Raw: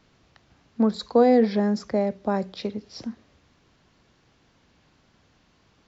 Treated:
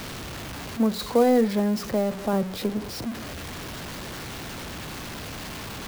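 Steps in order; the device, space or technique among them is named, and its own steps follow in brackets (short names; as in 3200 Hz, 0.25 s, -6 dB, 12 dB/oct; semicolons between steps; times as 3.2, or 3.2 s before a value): 2.33–3.06 tilt shelf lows +4.5 dB, about 900 Hz; early CD player with a faulty converter (zero-crossing step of -27.5 dBFS; clock jitter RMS 0.02 ms); gain -2.5 dB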